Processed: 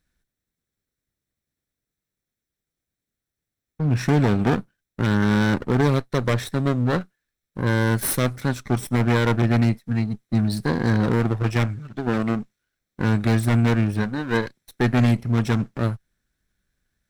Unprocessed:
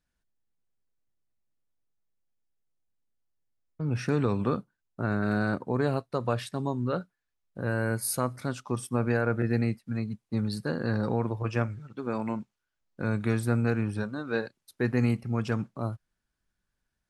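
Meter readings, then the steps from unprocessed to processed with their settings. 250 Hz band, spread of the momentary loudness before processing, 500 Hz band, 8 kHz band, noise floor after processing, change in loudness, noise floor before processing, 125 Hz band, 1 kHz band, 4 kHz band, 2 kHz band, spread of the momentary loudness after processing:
+8.0 dB, 8 LU, +5.0 dB, +5.5 dB, under -85 dBFS, +8.0 dB, -84 dBFS, +9.0 dB, +7.0 dB, +11.0 dB, +7.5 dB, 8 LU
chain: minimum comb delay 0.53 ms; wavefolder -18.5 dBFS; gain +8 dB

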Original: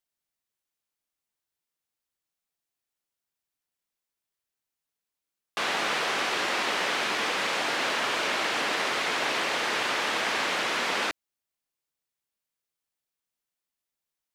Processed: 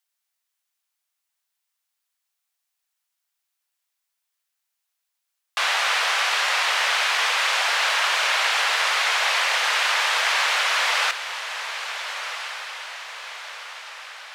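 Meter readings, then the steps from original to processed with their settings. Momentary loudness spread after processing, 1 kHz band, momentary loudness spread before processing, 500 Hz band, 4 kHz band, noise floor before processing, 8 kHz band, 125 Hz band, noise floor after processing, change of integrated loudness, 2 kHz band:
15 LU, +5.5 dB, 1 LU, -1.5 dB, +8.0 dB, under -85 dBFS, +8.0 dB, under -40 dB, -80 dBFS, +6.0 dB, +7.5 dB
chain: Bessel high-pass 940 Hz, order 8; on a send: diffused feedback echo 1.449 s, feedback 51%, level -10 dB; on the sum: gain +7.5 dB

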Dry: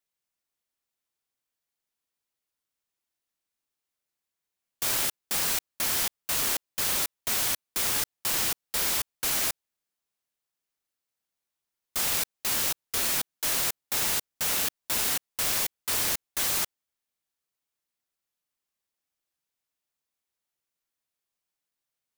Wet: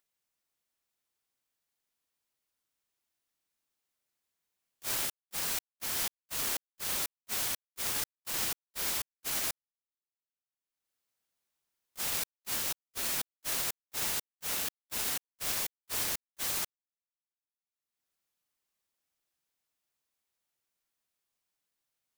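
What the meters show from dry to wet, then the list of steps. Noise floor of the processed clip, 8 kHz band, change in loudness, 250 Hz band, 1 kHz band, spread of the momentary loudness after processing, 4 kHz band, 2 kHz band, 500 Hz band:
under -85 dBFS, -7.0 dB, -6.5 dB, -6.5 dB, -7.0 dB, 3 LU, -7.0 dB, -7.0 dB, -7.0 dB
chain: gate -25 dBFS, range -44 dB; upward compressor, threshold -51 dBFS

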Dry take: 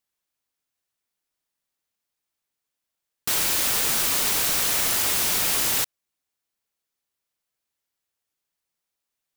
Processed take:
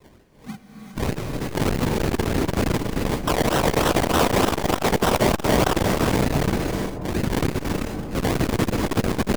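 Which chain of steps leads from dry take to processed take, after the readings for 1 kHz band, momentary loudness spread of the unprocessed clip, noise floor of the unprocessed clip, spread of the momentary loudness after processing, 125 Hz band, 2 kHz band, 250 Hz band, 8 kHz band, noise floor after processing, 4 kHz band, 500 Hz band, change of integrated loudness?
+12.0 dB, 5 LU, -84 dBFS, 9 LU, +22.0 dB, +4.5 dB, +21.5 dB, -7.0 dB, -49 dBFS, -1.0 dB, +18.0 dB, -2.5 dB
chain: cycle switcher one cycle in 3, inverted; wind noise 360 Hz -29 dBFS; expander -35 dBFS; AGC gain up to 12.5 dB; spectral noise reduction 19 dB; reverse; compressor 6:1, threshold -23 dBFS, peak gain reduction 14 dB; reverse; decimation with a swept rate 27×, swing 60% 3.3 Hz; hard clip -21.5 dBFS, distortion -14 dB; dark delay 0.274 s, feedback 63%, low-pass 930 Hz, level -11 dB; non-linear reverb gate 0.43 s rising, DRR 3 dB; core saturation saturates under 240 Hz; gain +8.5 dB

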